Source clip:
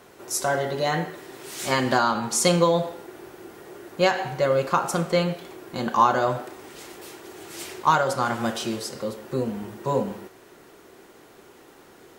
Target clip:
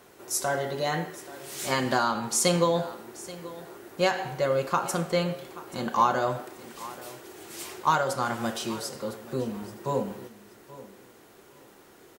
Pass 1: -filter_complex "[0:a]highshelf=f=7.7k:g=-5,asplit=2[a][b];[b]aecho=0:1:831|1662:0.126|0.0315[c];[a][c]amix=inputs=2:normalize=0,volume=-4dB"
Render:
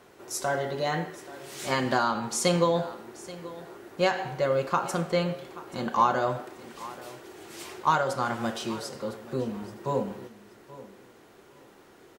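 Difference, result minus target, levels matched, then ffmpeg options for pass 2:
8000 Hz band -4.5 dB
-filter_complex "[0:a]highshelf=f=7.7k:g=5,asplit=2[a][b];[b]aecho=0:1:831|1662:0.126|0.0315[c];[a][c]amix=inputs=2:normalize=0,volume=-4dB"

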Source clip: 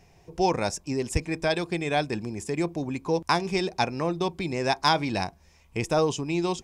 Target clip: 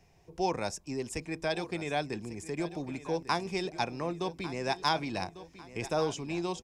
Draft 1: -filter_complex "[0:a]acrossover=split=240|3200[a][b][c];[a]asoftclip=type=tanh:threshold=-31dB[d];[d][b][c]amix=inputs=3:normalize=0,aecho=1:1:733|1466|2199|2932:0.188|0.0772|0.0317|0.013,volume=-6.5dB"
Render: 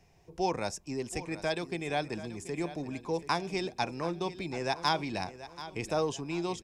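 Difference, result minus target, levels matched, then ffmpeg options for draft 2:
echo 0.415 s early
-filter_complex "[0:a]acrossover=split=240|3200[a][b][c];[a]asoftclip=type=tanh:threshold=-31dB[d];[d][b][c]amix=inputs=3:normalize=0,aecho=1:1:1148|2296|3444|4592:0.188|0.0772|0.0317|0.013,volume=-6.5dB"

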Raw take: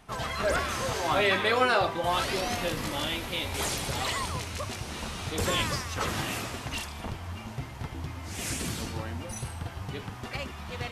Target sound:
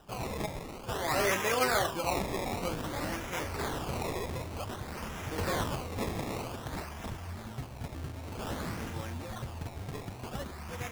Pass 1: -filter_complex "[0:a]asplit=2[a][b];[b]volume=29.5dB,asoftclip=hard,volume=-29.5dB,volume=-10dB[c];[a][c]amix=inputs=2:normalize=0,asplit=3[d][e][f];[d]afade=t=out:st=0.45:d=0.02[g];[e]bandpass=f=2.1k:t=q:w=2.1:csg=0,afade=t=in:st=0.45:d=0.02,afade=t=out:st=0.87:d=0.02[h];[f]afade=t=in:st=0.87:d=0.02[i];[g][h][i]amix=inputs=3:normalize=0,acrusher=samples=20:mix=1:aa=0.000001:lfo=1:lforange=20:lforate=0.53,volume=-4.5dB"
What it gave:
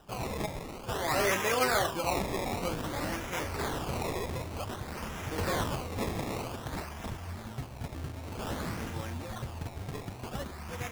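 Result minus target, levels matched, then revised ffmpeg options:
overloaded stage: distortion -4 dB
-filter_complex "[0:a]asplit=2[a][b];[b]volume=38.5dB,asoftclip=hard,volume=-38.5dB,volume=-10dB[c];[a][c]amix=inputs=2:normalize=0,asplit=3[d][e][f];[d]afade=t=out:st=0.45:d=0.02[g];[e]bandpass=f=2.1k:t=q:w=2.1:csg=0,afade=t=in:st=0.45:d=0.02,afade=t=out:st=0.87:d=0.02[h];[f]afade=t=in:st=0.87:d=0.02[i];[g][h][i]amix=inputs=3:normalize=0,acrusher=samples=20:mix=1:aa=0.000001:lfo=1:lforange=20:lforate=0.53,volume=-4.5dB"

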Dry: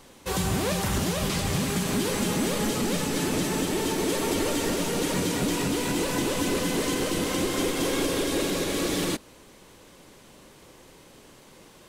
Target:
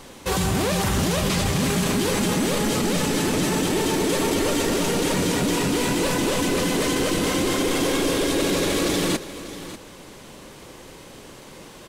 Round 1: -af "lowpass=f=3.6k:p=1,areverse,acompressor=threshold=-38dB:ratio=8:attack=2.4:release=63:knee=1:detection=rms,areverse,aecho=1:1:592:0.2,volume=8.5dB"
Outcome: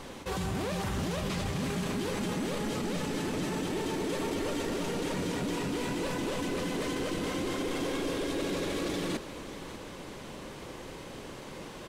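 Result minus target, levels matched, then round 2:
compressor: peak gain reduction +10 dB; 8000 Hz band -4.0 dB
-af "lowpass=f=12k:p=1,areverse,acompressor=threshold=-26dB:ratio=8:attack=2.4:release=63:knee=1:detection=rms,areverse,aecho=1:1:592:0.2,volume=8.5dB"

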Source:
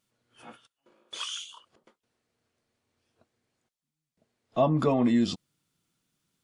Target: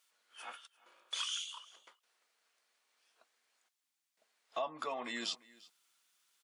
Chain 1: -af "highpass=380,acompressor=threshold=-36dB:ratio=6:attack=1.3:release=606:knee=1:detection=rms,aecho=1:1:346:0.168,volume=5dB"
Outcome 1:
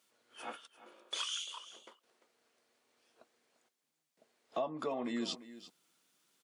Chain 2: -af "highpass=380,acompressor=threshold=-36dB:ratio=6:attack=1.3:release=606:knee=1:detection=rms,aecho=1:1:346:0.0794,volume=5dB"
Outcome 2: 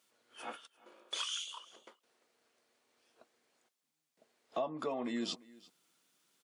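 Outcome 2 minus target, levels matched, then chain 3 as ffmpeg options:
500 Hz band +3.0 dB
-af "highpass=1k,acompressor=threshold=-36dB:ratio=6:attack=1.3:release=606:knee=1:detection=rms,aecho=1:1:346:0.0794,volume=5dB"

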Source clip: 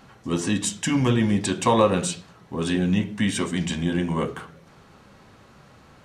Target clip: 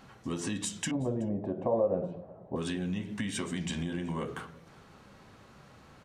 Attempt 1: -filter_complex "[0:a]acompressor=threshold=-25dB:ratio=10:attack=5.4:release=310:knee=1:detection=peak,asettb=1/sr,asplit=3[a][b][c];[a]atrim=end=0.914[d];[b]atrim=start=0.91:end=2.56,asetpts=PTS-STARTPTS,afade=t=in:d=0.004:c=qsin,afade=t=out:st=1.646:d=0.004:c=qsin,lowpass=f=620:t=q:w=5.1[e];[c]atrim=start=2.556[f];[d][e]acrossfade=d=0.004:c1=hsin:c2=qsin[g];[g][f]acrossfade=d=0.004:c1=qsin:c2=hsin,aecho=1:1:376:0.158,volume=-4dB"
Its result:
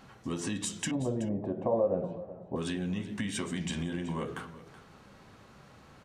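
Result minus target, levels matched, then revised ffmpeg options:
echo-to-direct +9 dB
-filter_complex "[0:a]acompressor=threshold=-25dB:ratio=10:attack=5.4:release=310:knee=1:detection=peak,asettb=1/sr,asplit=3[a][b][c];[a]atrim=end=0.914[d];[b]atrim=start=0.91:end=2.56,asetpts=PTS-STARTPTS,afade=t=in:d=0.004:c=qsin,afade=t=out:st=1.646:d=0.004:c=qsin,lowpass=f=620:t=q:w=5.1[e];[c]atrim=start=2.556[f];[d][e]acrossfade=d=0.004:c1=hsin:c2=qsin[g];[g][f]acrossfade=d=0.004:c1=qsin:c2=hsin,aecho=1:1:376:0.0562,volume=-4dB"

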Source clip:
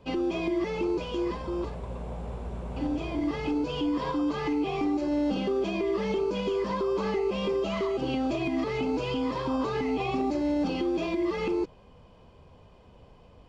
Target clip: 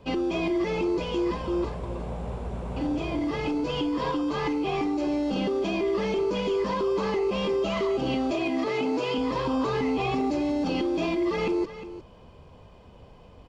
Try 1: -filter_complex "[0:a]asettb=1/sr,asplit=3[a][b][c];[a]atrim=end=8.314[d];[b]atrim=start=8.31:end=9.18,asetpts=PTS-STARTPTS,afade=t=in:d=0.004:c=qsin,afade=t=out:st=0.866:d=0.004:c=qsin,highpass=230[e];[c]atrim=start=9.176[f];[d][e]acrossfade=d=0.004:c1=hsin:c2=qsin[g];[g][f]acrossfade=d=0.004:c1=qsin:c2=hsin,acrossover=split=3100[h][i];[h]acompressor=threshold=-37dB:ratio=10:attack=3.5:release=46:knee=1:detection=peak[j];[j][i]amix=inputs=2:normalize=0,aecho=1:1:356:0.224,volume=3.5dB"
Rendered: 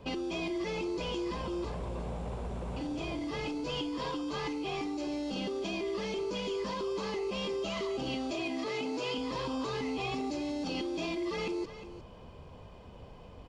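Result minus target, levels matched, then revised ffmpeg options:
compressor: peak gain reduction +9 dB
-filter_complex "[0:a]asettb=1/sr,asplit=3[a][b][c];[a]atrim=end=8.314[d];[b]atrim=start=8.31:end=9.18,asetpts=PTS-STARTPTS,afade=t=in:d=0.004:c=qsin,afade=t=out:st=0.866:d=0.004:c=qsin,highpass=230[e];[c]atrim=start=9.176[f];[d][e]acrossfade=d=0.004:c1=hsin:c2=qsin[g];[g][f]acrossfade=d=0.004:c1=qsin:c2=hsin,acrossover=split=3100[h][i];[h]acompressor=threshold=-27dB:ratio=10:attack=3.5:release=46:knee=1:detection=peak[j];[j][i]amix=inputs=2:normalize=0,aecho=1:1:356:0.224,volume=3.5dB"

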